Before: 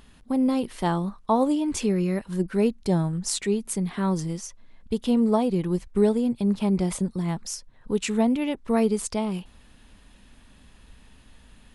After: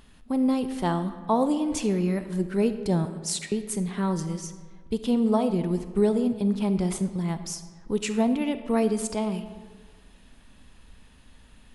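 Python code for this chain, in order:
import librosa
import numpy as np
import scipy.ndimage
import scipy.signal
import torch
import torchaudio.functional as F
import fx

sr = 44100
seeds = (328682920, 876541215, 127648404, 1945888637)

y = fx.cheby2_highpass(x, sr, hz=290.0, order=4, stop_db=70, at=(3.05, 3.52))
y = fx.rev_freeverb(y, sr, rt60_s=1.6, hf_ratio=0.6, predelay_ms=5, drr_db=10.0)
y = y * librosa.db_to_amplitude(-1.5)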